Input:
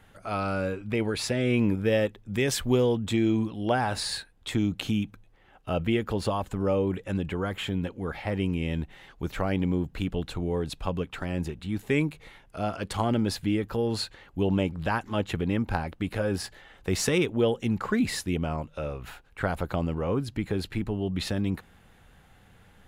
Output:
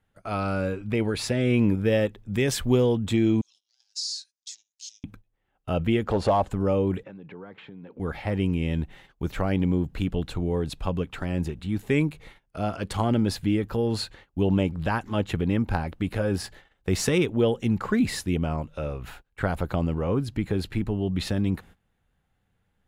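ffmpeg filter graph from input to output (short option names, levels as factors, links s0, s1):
-filter_complex "[0:a]asettb=1/sr,asplit=3[s0][s1][s2];[s0]atrim=end=3.414[s3];[s1]atrim=start=3.41:end=5.04,asetpts=PTS-STARTPTS,afade=t=in:d=0.004:c=qsin,afade=t=out:st=1.626:d=0.004:c=qsin,acompressor=threshold=0.0141:ratio=3:attack=3.2:release=140:knee=1:detection=peak,aeval=exprs='0.1*sin(PI/2*3.98*val(0)/0.1)':c=same,asuperpass=centerf=5800:order=4:qfactor=2.8[s4];[s2]atrim=start=5.036[s5];[s3][s4]acrossfade=d=0.004:c1=hsin:c2=qsin[s6];[s6][s5]acrossfade=d=0.004:c1=qsin:c2=hsin,asettb=1/sr,asplit=3[s7][s8][s9];[s7]atrim=end=6.064[s10];[s8]atrim=start=6.06:end=6.5,asetpts=PTS-STARTPTS,afade=t=in:d=0.004:c=qsin,afade=t=out:st=0.436:d=0.004:c=qsin,lowpass=8300,volume=14.1,asoftclip=hard,volume=0.0708,equalizer=f=680:w=1.1:g=10[s11];[s9]atrim=start=6.496[s12];[s10][s11]acrossfade=d=0.004:c1=hsin:c2=qsin[s13];[s13][s12]acrossfade=d=0.004:c1=qsin:c2=hsin,asettb=1/sr,asplit=3[s14][s15][s16];[s14]atrim=end=7.034[s17];[s15]atrim=start=7.03:end=8,asetpts=PTS-STARTPTS,afade=t=in:d=0.004:c=qsin,afade=t=out:st=0.966:d=0.004:c=qsin,acompressor=threshold=0.01:ratio=12:attack=3.2:release=140:knee=1:detection=peak,highpass=f=140:w=0.5412,highpass=f=140:w=1.3066,equalizer=f=450:t=q:w=4:g=5,equalizer=f=900:t=q:w=4:g=4,equalizer=f=3100:t=q:w=4:g=-7,lowpass=f=3900:w=0.5412,lowpass=f=3900:w=1.3066[s18];[s16]atrim=start=7.996[s19];[s17][s18]acrossfade=d=0.004:c1=hsin:c2=qsin[s20];[s20][s19]acrossfade=d=0.004:c1=qsin:c2=hsin,agate=range=0.112:threshold=0.00398:ratio=16:detection=peak,lowshelf=f=340:g=4"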